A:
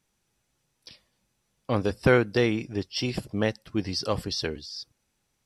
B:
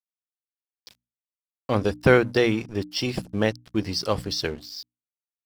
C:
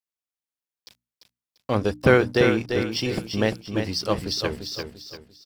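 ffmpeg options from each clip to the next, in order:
-af "aeval=exprs='sgn(val(0))*max(abs(val(0))-0.00501,0)':c=same,bandreject=f=60:t=h:w=6,bandreject=f=120:t=h:w=6,bandreject=f=180:t=h:w=6,bandreject=f=240:t=h:w=6,bandreject=f=300:t=h:w=6,volume=3.5dB"
-af "aecho=1:1:344|688|1032|1376:0.473|0.161|0.0547|0.0186"

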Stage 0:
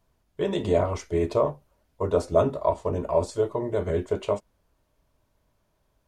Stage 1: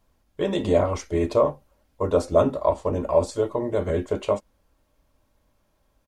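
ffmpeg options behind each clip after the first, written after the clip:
-af "aecho=1:1:3.7:0.33,volume=2.5dB"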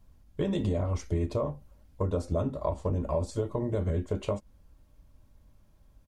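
-af "bass=f=250:g=13,treble=f=4k:g=2,acompressor=threshold=-23dB:ratio=6,volume=-3dB"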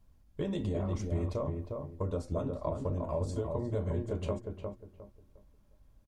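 -filter_complex "[0:a]asplit=2[a][b];[b]adelay=356,lowpass=f=1.4k:p=1,volume=-4dB,asplit=2[c][d];[d]adelay=356,lowpass=f=1.4k:p=1,volume=0.28,asplit=2[e][f];[f]adelay=356,lowpass=f=1.4k:p=1,volume=0.28,asplit=2[g][h];[h]adelay=356,lowpass=f=1.4k:p=1,volume=0.28[i];[a][c][e][g][i]amix=inputs=5:normalize=0,volume=-5dB"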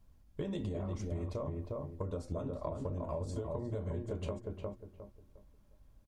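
-af "acompressor=threshold=-34dB:ratio=6"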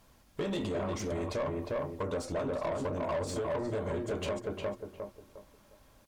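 -filter_complex "[0:a]aemphasis=mode=production:type=cd,asplit=2[a][b];[b]highpass=f=720:p=1,volume=23dB,asoftclip=type=tanh:threshold=-24.5dB[c];[a][c]amix=inputs=2:normalize=0,lowpass=f=2.8k:p=1,volume=-6dB"

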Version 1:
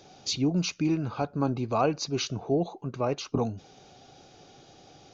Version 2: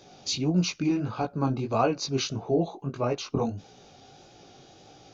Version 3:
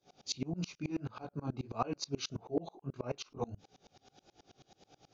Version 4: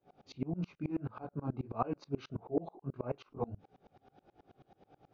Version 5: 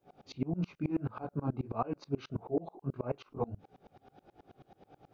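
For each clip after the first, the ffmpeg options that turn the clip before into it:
-af "flanger=delay=16.5:depth=6:speed=1.6,volume=4dB"
-af "aeval=exprs='val(0)*pow(10,-29*if(lt(mod(-9.3*n/s,1),2*abs(-9.3)/1000),1-mod(-9.3*n/s,1)/(2*abs(-9.3)/1000),(mod(-9.3*n/s,1)-2*abs(-9.3)/1000)/(1-2*abs(-9.3)/1000))/20)':c=same,volume=-3dB"
-af "lowpass=1.6k,volume=1dB"
-af "alimiter=level_in=0.5dB:limit=-24dB:level=0:latency=1:release=272,volume=-0.5dB,volume=4dB"

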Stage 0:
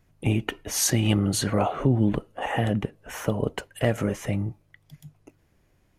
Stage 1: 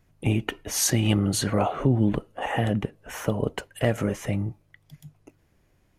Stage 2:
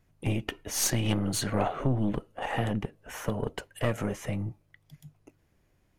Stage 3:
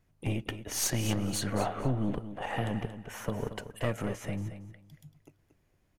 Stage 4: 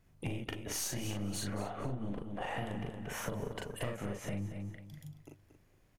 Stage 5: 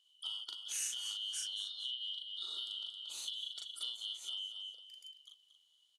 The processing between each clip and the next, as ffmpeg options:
-af anull
-af "aeval=exprs='(tanh(5.62*val(0)+0.7)-tanh(0.7))/5.62':c=same"
-af "aecho=1:1:230|460|690:0.282|0.0592|0.0124,volume=-3dB"
-filter_complex "[0:a]asplit=2[a][b];[b]adelay=40,volume=-2dB[c];[a][c]amix=inputs=2:normalize=0,acompressor=threshold=-37dB:ratio=5,volume=1.5dB"
-af "afftfilt=real='real(if(lt(b,272),68*(eq(floor(b/68),0)*1+eq(floor(b/68),1)*3+eq(floor(b/68),2)*0+eq(floor(b/68),3)*2)+mod(b,68),b),0)':imag='imag(if(lt(b,272),68*(eq(floor(b/68),0)*1+eq(floor(b/68),1)*3+eq(floor(b/68),2)*0+eq(floor(b/68),3)*2)+mod(b,68),b),0)':win_size=2048:overlap=0.75,lowpass=f=9.3k:w=0.5412,lowpass=f=9.3k:w=1.3066,aderivative,volume=2dB"

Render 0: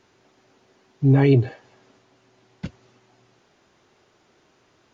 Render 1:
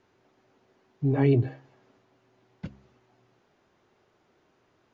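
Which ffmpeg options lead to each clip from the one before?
-af "highshelf=f=3.3k:g=-10,bandreject=f=67.41:t=h:w=4,bandreject=f=134.82:t=h:w=4,bandreject=f=202.23:t=h:w=4,bandreject=f=269.64:t=h:w=4,bandreject=f=337.05:t=h:w=4,volume=-5dB"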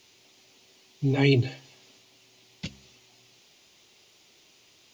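-af "aexciter=amount=5:drive=9.1:freq=2.3k"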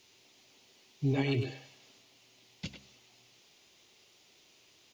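-filter_complex "[0:a]alimiter=limit=-16.5dB:level=0:latency=1:release=241,asplit=2[a][b];[b]adelay=100,highpass=300,lowpass=3.4k,asoftclip=type=hard:threshold=-25dB,volume=-6dB[c];[a][c]amix=inputs=2:normalize=0,volume=-4.5dB"

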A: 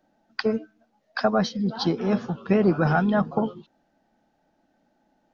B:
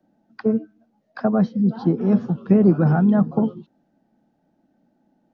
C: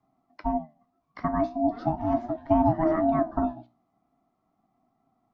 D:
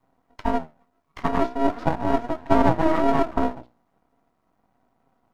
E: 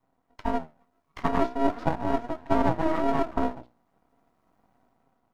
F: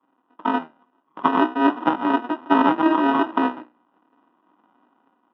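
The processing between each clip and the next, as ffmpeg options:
-filter_complex "[0:a]equalizer=f=190:t=o:w=2.9:g=13.5,acrossover=split=100|960|1800[a][b][c][d];[d]acompressor=threshold=-45dB:ratio=6[e];[a][b][c][e]amix=inputs=4:normalize=0,volume=-6.5dB"
-af "aeval=exprs='val(0)*sin(2*PI*480*n/s)':c=same,flanger=delay=7.5:depth=9.2:regen=70:speed=0.4:shape=sinusoidal"
-af "aeval=exprs='max(val(0),0)':c=same,volume=7.5dB"
-af "dynaudnorm=f=190:g=7:m=7dB,volume=-5.5dB"
-af "acrusher=samples=20:mix=1:aa=0.000001,highpass=f=240:w=0.5412,highpass=f=240:w=1.3066,equalizer=f=310:t=q:w=4:g=5,equalizer=f=460:t=q:w=4:g=-5,equalizer=f=670:t=q:w=4:g=-7,equalizer=f=990:t=q:w=4:g=7,equalizer=f=1.6k:t=q:w=4:g=-5,lowpass=f=2.3k:w=0.5412,lowpass=f=2.3k:w=1.3066,volume=7.5dB"

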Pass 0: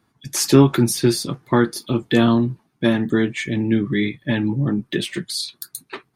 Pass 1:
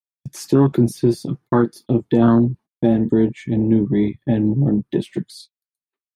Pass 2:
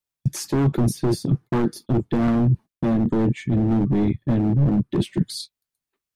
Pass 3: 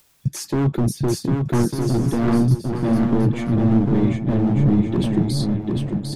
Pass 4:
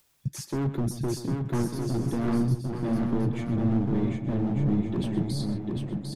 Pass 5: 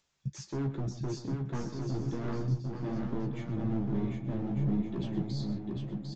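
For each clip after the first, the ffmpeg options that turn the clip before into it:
-af "afwtdn=0.1,agate=range=-43dB:threshold=-41dB:ratio=16:detection=peak,alimiter=level_in=8dB:limit=-1dB:release=50:level=0:latency=1,volume=-4.5dB"
-af "volume=16dB,asoftclip=hard,volume=-16dB,areverse,acompressor=threshold=-30dB:ratio=6,areverse,lowshelf=f=160:g=10.5,volume=7.5dB"
-filter_complex "[0:a]asplit=2[a][b];[b]aecho=0:1:750|1200|1470|1632|1729:0.631|0.398|0.251|0.158|0.1[c];[a][c]amix=inputs=2:normalize=0,acompressor=mode=upward:threshold=-36dB:ratio=2.5"
-filter_complex "[0:a]asplit=2[a][b];[b]adelay=128.3,volume=-12dB,highshelf=f=4k:g=-2.89[c];[a][c]amix=inputs=2:normalize=0,volume=-8.5dB"
-filter_complex "[0:a]flanger=delay=4.2:depth=6.4:regen=-74:speed=0.62:shape=sinusoidal,asplit=2[a][b];[b]adelay=15,volume=-6.5dB[c];[a][c]amix=inputs=2:normalize=0,aresample=16000,aresample=44100,volume=-3dB"

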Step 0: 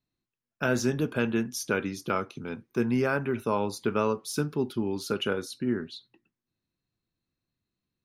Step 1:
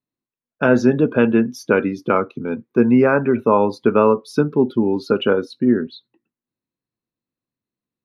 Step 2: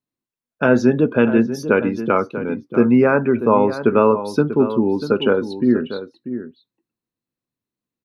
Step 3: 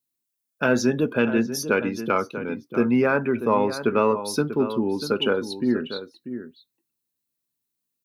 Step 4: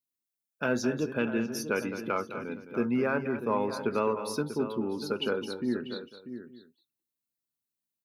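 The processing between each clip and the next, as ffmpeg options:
-af "afftdn=nr=13:nf=-41,equalizer=f=125:t=o:w=1:g=5,equalizer=f=250:t=o:w=1:g=10,equalizer=f=500:t=o:w=1:g=10,equalizer=f=1k:t=o:w=1:g=9,equalizer=f=2k:t=o:w=1:g=6,equalizer=f=4k:t=o:w=1:g=5,equalizer=f=8k:t=o:w=1:g=-9"
-filter_complex "[0:a]asplit=2[a][b];[b]adelay=641.4,volume=-11dB,highshelf=f=4k:g=-14.4[c];[a][c]amix=inputs=2:normalize=0"
-filter_complex "[0:a]crystalizer=i=5:c=0,asplit=2[a][b];[b]asoftclip=type=tanh:threshold=-8dB,volume=-11dB[c];[a][c]amix=inputs=2:normalize=0,volume=-8.5dB"
-af "aecho=1:1:212:0.282,volume=-8dB"

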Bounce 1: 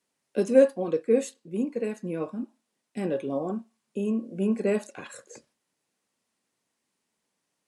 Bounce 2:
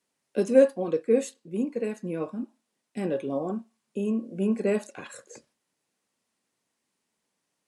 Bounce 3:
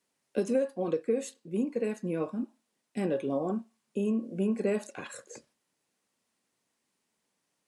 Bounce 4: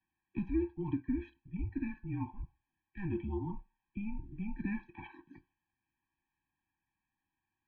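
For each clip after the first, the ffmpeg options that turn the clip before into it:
-af anull
-af "acompressor=threshold=-24dB:ratio=10"
-af "equalizer=f=420:t=o:w=0.57:g=-4,highpass=f=270:t=q:w=0.5412,highpass=f=270:t=q:w=1.307,lowpass=f=3k:t=q:w=0.5176,lowpass=f=3k:t=q:w=0.7071,lowpass=f=3k:t=q:w=1.932,afreqshift=-200,afftfilt=real='re*eq(mod(floor(b*sr/1024/380),2),0)':imag='im*eq(mod(floor(b*sr/1024/380),2),0)':win_size=1024:overlap=0.75,volume=-2dB"

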